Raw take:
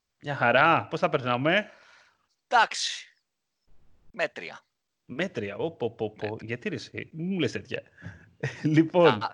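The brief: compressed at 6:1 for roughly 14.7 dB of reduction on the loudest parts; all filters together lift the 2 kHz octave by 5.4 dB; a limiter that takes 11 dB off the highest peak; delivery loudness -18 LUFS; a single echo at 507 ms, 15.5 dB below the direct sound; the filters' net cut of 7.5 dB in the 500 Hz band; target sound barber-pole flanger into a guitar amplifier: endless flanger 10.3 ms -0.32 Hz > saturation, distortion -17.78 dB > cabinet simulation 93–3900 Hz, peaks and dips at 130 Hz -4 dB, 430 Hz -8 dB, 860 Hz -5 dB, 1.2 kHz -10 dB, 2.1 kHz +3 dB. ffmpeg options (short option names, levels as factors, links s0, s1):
-filter_complex "[0:a]equalizer=f=500:t=o:g=-6,equalizer=f=2000:t=o:g=8.5,acompressor=threshold=0.0316:ratio=6,alimiter=level_in=1.12:limit=0.0631:level=0:latency=1,volume=0.891,aecho=1:1:507:0.168,asplit=2[s0][s1];[s1]adelay=10.3,afreqshift=-0.32[s2];[s0][s2]amix=inputs=2:normalize=1,asoftclip=threshold=0.0266,highpass=93,equalizer=f=130:t=q:w=4:g=-4,equalizer=f=430:t=q:w=4:g=-8,equalizer=f=860:t=q:w=4:g=-5,equalizer=f=1200:t=q:w=4:g=-10,equalizer=f=2100:t=q:w=4:g=3,lowpass=f=3900:w=0.5412,lowpass=f=3900:w=1.3066,volume=18.8"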